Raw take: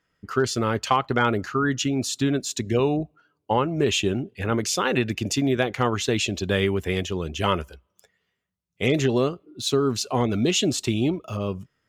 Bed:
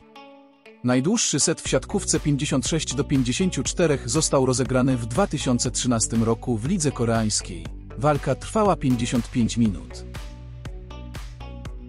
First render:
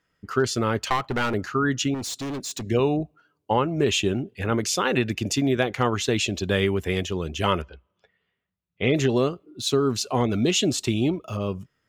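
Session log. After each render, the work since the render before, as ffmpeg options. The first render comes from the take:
ffmpeg -i in.wav -filter_complex "[0:a]asettb=1/sr,asplit=3[link_01][link_02][link_03];[link_01]atrim=end=0.794[link_04];[link_02]atrim=start=0.79:end=1.34,asetpts=PTS-STARTPTS,afade=type=in:duration=0.004:curve=qsin,afade=type=out:start_time=0.546:duration=0.004:curve=qsin,aeval=exprs='clip(val(0),-1,0.0631)':channel_layout=same[link_05];[link_03]atrim=start=1.336[link_06];[link_04][link_05]acrossfade=duration=0.004:curve1=hsin:curve2=qsin[link_07];[link_07][link_06]acrossfade=duration=0.004:curve1=qsin:curve2=hsin,asettb=1/sr,asplit=3[link_08][link_09][link_10];[link_08]atrim=end=1.944[link_11];[link_09]atrim=start=1.94:end=2.63,asetpts=PTS-STARTPTS,afade=type=in:duration=0.004:curve=qsin,afade=type=out:start_time=0.686:duration=0.004:curve=qsin,asoftclip=type=hard:threshold=-28.5dB[link_12];[link_10]atrim=start=2.626[link_13];[link_11][link_12]acrossfade=duration=0.004:curve1=hsin:curve2=qsin[link_14];[link_14][link_13]acrossfade=duration=0.004:curve1=qsin:curve2=hsin,asettb=1/sr,asplit=3[link_15][link_16][link_17];[link_15]atrim=end=7.624[link_18];[link_16]atrim=start=7.62:end=8.96,asetpts=PTS-STARTPTS,afade=type=in:duration=0.004:curve=qsin,afade=type=out:start_time=1.336:duration=0.004:curve=qsin,lowpass=frequency=3700:width=0.5412,lowpass=frequency=3700:width=1.3066[link_19];[link_17]atrim=start=8.956[link_20];[link_18][link_19]acrossfade=duration=0.004:curve1=hsin:curve2=qsin[link_21];[link_21][link_20]acrossfade=duration=0.004:curve1=qsin:curve2=hsin" out.wav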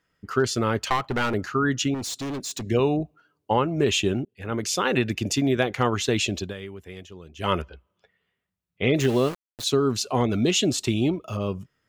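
ffmpeg -i in.wav -filter_complex "[0:a]asettb=1/sr,asplit=3[link_01][link_02][link_03];[link_01]atrim=end=9.004[link_04];[link_02]atrim=start=9:end=9.64,asetpts=PTS-STARTPTS,afade=type=in:duration=0.004:curve=qsin,afade=type=out:start_time=0.636:duration=0.004:curve=qsin,aeval=exprs='val(0)*gte(abs(val(0)),0.0251)':channel_layout=same[link_05];[link_03]atrim=start=9.636[link_06];[link_04][link_05]acrossfade=duration=0.004:curve1=hsin:curve2=qsin[link_07];[link_07][link_06]acrossfade=duration=0.004:curve1=qsin:curve2=hsin,asplit=4[link_08][link_09][link_10][link_11];[link_08]atrim=end=4.25,asetpts=PTS-STARTPTS,afade=type=out:start_time=4.246:duration=0.004:curve=hsin[link_12];[link_09]atrim=start=4.25:end=6.54,asetpts=PTS-STARTPTS,afade=type=in:duration=0.7:curve=qsin,afade=type=out:start_time=2.12:duration=0.17:silence=0.177828[link_13];[link_10]atrim=start=6.54:end=7.36,asetpts=PTS-STARTPTS,volume=-15dB[link_14];[link_11]atrim=start=7.36,asetpts=PTS-STARTPTS,afade=type=in:duration=0.17:silence=0.177828[link_15];[link_12][link_13][link_14][link_15]concat=n=4:v=0:a=1" out.wav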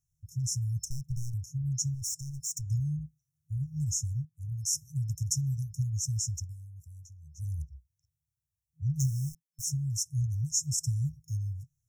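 ffmpeg -i in.wav -af "afftfilt=real='re*(1-between(b*sr/4096,160,5300))':imag='im*(1-between(b*sr/4096,160,5300))':win_size=4096:overlap=0.75" out.wav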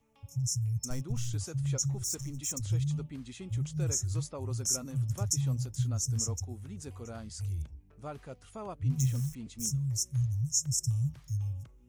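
ffmpeg -i in.wav -i bed.wav -filter_complex "[1:a]volume=-22dB[link_01];[0:a][link_01]amix=inputs=2:normalize=0" out.wav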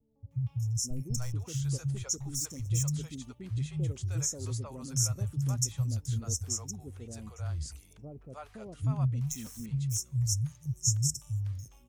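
ffmpeg -i in.wav -filter_complex "[0:a]acrossover=split=550[link_01][link_02];[link_02]adelay=310[link_03];[link_01][link_03]amix=inputs=2:normalize=0" out.wav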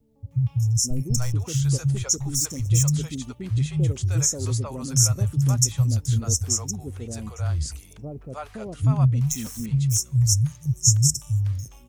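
ffmpeg -i in.wav -af "volume=10dB" out.wav

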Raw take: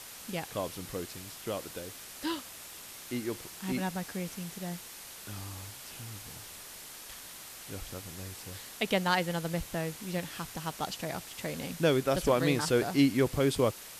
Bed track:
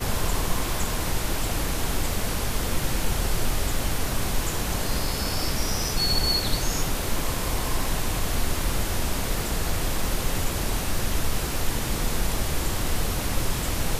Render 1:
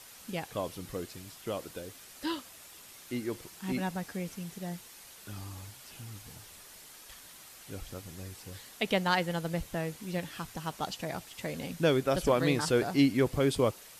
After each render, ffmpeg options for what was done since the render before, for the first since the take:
ffmpeg -i in.wav -af "afftdn=noise_reduction=6:noise_floor=-47" out.wav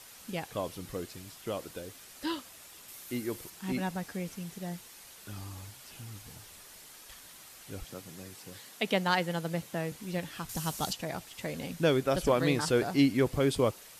ffmpeg -i in.wav -filter_complex "[0:a]asettb=1/sr,asplit=3[link_01][link_02][link_03];[link_01]atrim=end=2.884[link_04];[link_02]atrim=start=2.88:end=3.5,asetpts=PTS-STARTPTS,afade=type=in:duration=0.004:curve=qsin,afade=type=out:start_time=0.616:duration=0.004:curve=qsin,highshelf=frequency=11000:gain=10.5[link_05];[link_03]atrim=start=3.496[link_06];[link_04][link_05]acrossfade=duration=0.004:curve1=hsin:curve2=qsin[link_07];[link_07][link_06]acrossfade=duration=0.004:curve1=qsin:curve2=hsin,asettb=1/sr,asplit=3[link_08][link_09][link_10];[link_08]atrim=end=7.844[link_11];[link_09]atrim=start=7.84:end=9.92,asetpts=PTS-STARTPTS,afade=type=in:duration=0.004:curve=qsin,afade=type=out:start_time=2.076:duration=0.004:curve=qsin,highpass=frequency=120:width=0.5412,highpass=frequency=120:width=1.3066[link_12];[link_10]atrim=start=9.916[link_13];[link_11][link_12]acrossfade=duration=0.004:curve1=hsin:curve2=qsin[link_14];[link_14][link_13]acrossfade=duration=0.004:curve1=qsin:curve2=hsin,asettb=1/sr,asplit=3[link_15][link_16][link_17];[link_15]atrim=end=10.494[link_18];[link_16]atrim=start=10.49:end=10.93,asetpts=PTS-STARTPTS,afade=type=in:duration=0.004:curve=qsin,afade=type=out:start_time=0.436:duration=0.004:curve=qsin,bass=frequency=250:gain=6,treble=frequency=4000:gain=12[link_19];[link_17]atrim=start=10.926[link_20];[link_18][link_19]acrossfade=duration=0.004:curve1=hsin:curve2=qsin[link_21];[link_21][link_20]acrossfade=duration=0.004:curve1=qsin:curve2=hsin" out.wav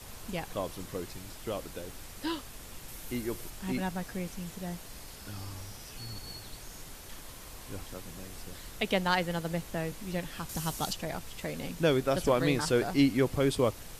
ffmpeg -i in.wav -i bed.wav -filter_complex "[1:a]volume=-22dB[link_01];[0:a][link_01]amix=inputs=2:normalize=0" out.wav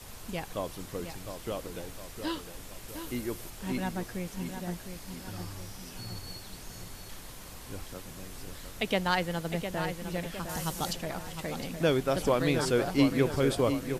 ffmpeg -i in.wav -filter_complex "[0:a]asplit=2[link_01][link_02];[link_02]adelay=708,lowpass=frequency=3900:poles=1,volume=-8dB,asplit=2[link_03][link_04];[link_04]adelay=708,lowpass=frequency=3900:poles=1,volume=0.5,asplit=2[link_05][link_06];[link_06]adelay=708,lowpass=frequency=3900:poles=1,volume=0.5,asplit=2[link_07][link_08];[link_08]adelay=708,lowpass=frequency=3900:poles=1,volume=0.5,asplit=2[link_09][link_10];[link_10]adelay=708,lowpass=frequency=3900:poles=1,volume=0.5,asplit=2[link_11][link_12];[link_12]adelay=708,lowpass=frequency=3900:poles=1,volume=0.5[link_13];[link_01][link_03][link_05][link_07][link_09][link_11][link_13]amix=inputs=7:normalize=0" out.wav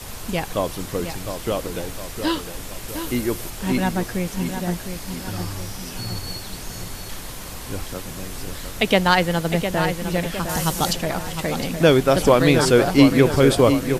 ffmpeg -i in.wav -af "volume=11.5dB,alimiter=limit=-2dB:level=0:latency=1" out.wav

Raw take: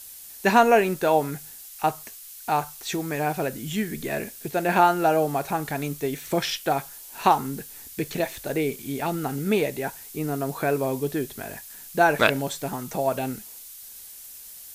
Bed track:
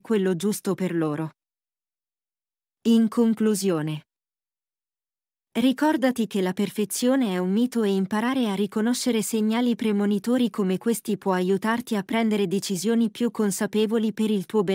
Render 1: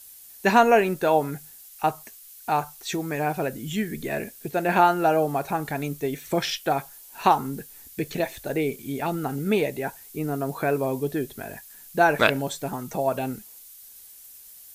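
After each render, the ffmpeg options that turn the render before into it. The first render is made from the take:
ffmpeg -i in.wav -af "afftdn=noise_reduction=6:noise_floor=-43" out.wav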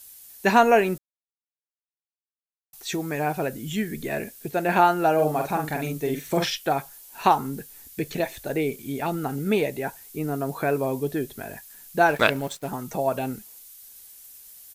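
ffmpeg -i in.wav -filter_complex "[0:a]asplit=3[link_01][link_02][link_03];[link_01]afade=type=out:start_time=5.18:duration=0.02[link_04];[link_02]asplit=2[link_05][link_06];[link_06]adelay=46,volume=-4dB[link_07];[link_05][link_07]amix=inputs=2:normalize=0,afade=type=in:start_time=5.18:duration=0.02,afade=type=out:start_time=6.48:duration=0.02[link_08];[link_03]afade=type=in:start_time=6.48:duration=0.02[link_09];[link_04][link_08][link_09]amix=inputs=3:normalize=0,asettb=1/sr,asplit=3[link_10][link_11][link_12];[link_10]atrim=end=12.064[link_13];[link_11]atrim=start=12.06:end=12.68,asetpts=PTS-STARTPTS,afade=type=in:duration=0.004:curve=qsin,afade=type=out:start_time=0.616:duration=0.004:curve=qsin,aeval=exprs='sgn(val(0))*max(abs(val(0))-0.00841,0)':channel_layout=same[link_14];[link_12]atrim=start=12.676[link_15];[link_13][link_14]acrossfade=duration=0.004:curve1=hsin:curve2=qsin[link_16];[link_16][link_15]acrossfade=duration=0.004:curve1=qsin:curve2=hsin,asplit=3[link_17][link_18][link_19];[link_17]atrim=end=0.98,asetpts=PTS-STARTPTS,afade=type=out:start_time=0.976:duration=0.004:curve=hsin[link_20];[link_18]atrim=start=0.98:end=2.73,asetpts=PTS-STARTPTS,volume=0[link_21];[link_19]atrim=start=2.73,asetpts=PTS-STARTPTS,afade=type=in:duration=0.004:curve=hsin[link_22];[link_20][link_21][link_22]concat=n=3:v=0:a=1" out.wav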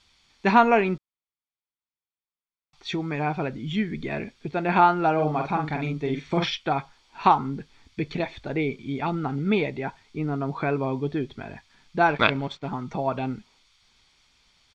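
ffmpeg -i in.wav -af "lowpass=frequency=4300:width=0.5412,lowpass=frequency=4300:width=1.3066,aecho=1:1:0.9:0.41" out.wav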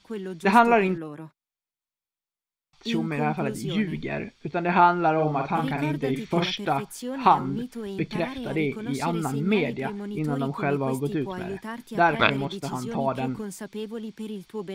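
ffmpeg -i in.wav -i bed.wav -filter_complex "[1:a]volume=-11.5dB[link_01];[0:a][link_01]amix=inputs=2:normalize=0" out.wav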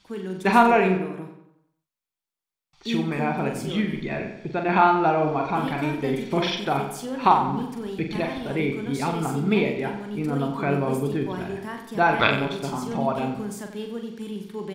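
ffmpeg -i in.wav -filter_complex "[0:a]asplit=2[link_01][link_02];[link_02]adelay=43,volume=-6.5dB[link_03];[link_01][link_03]amix=inputs=2:normalize=0,asplit=2[link_04][link_05];[link_05]adelay=91,lowpass=frequency=4800:poles=1,volume=-9dB,asplit=2[link_06][link_07];[link_07]adelay=91,lowpass=frequency=4800:poles=1,volume=0.49,asplit=2[link_08][link_09];[link_09]adelay=91,lowpass=frequency=4800:poles=1,volume=0.49,asplit=2[link_10][link_11];[link_11]adelay=91,lowpass=frequency=4800:poles=1,volume=0.49,asplit=2[link_12][link_13];[link_13]adelay=91,lowpass=frequency=4800:poles=1,volume=0.49,asplit=2[link_14][link_15];[link_15]adelay=91,lowpass=frequency=4800:poles=1,volume=0.49[link_16];[link_06][link_08][link_10][link_12][link_14][link_16]amix=inputs=6:normalize=0[link_17];[link_04][link_17]amix=inputs=2:normalize=0" out.wav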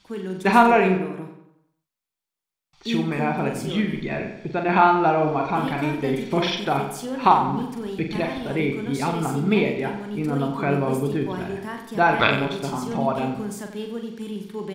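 ffmpeg -i in.wav -af "volume=1.5dB,alimiter=limit=-2dB:level=0:latency=1" out.wav

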